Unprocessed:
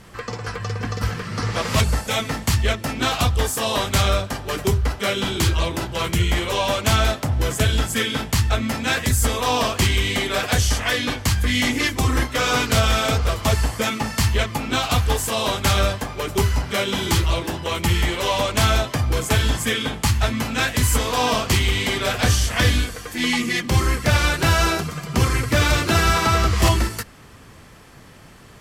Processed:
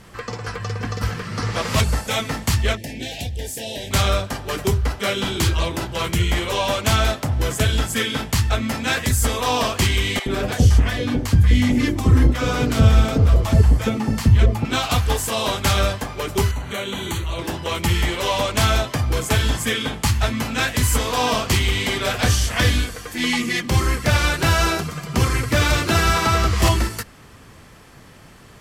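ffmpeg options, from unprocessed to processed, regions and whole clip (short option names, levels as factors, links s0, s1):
-filter_complex "[0:a]asettb=1/sr,asplit=3[s0][s1][s2];[s0]atrim=end=2.774[s3];[s1]atrim=start=2.77:end=3.91,asetpts=PTS-STARTPTS,afade=t=in:d=0.004:c=qsin,afade=t=out:st=1.136:d=0.004:c=qsin,equalizer=f=780:t=o:w=0.22:g=-7.5,acompressor=threshold=0.0316:ratio=2:attack=3.2:release=140:knee=1:detection=peak,asuperstop=centerf=1200:order=8:qfactor=1.4[s4];[s2]atrim=start=3.906[s5];[s3][s4]acrossfade=d=0.004:c1=hsin:c2=qsin[s6];[s6][s5]acrossfade=d=0.004:c1=qsin:c2=hsin,asettb=1/sr,asplit=3[s7][s8][s9];[s7]atrim=end=10.194[s10];[s8]atrim=start=10.19:end=14.65,asetpts=PTS-STARTPTS,afade=t=in:d=0.004:c=qsin,afade=t=out:st=4.456:d=0.004:c=qsin,tiltshelf=f=690:g=7.5,acrossover=split=690[s11][s12];[s11]adelay=70[s13];[s13][s12]amix=inputs=2:normalize=0,atrim=end_sample=196686[s14];[s9]atrim=start=14.646[s15];[s10][s14]acrossfade=d=0.004:c1=hsin:c2=qsin[s16];[s16][s15]acrossfade=d=0.004:c1=qsin:c2=hsin,asettb=1/sr,asplit=3[s17][s18][s19];[s17]atrim=end=16.514[s20];[s18]atrim=start=16.51:end=17.39,asetpts=PTS-STARTPTS,afade=t=in:d=0.004:c=qsin,afade=t=out:st=0.876:d=0.004:c=qsin,acompressor=threshold=0.0501:ratio=2:attack=3.2:release=140:knee=1:detection=peak,asuperstop=centerf=5100:order=4:qfactor=3.5[s21];[s19]atrim=start=17.386[s22];[s20][s21]acrossfade=d=0.004:c1=hsin:c2=qsin[s23];[s23][s22]acrossfade=d=0.004:c1=qsin:c2=hsin"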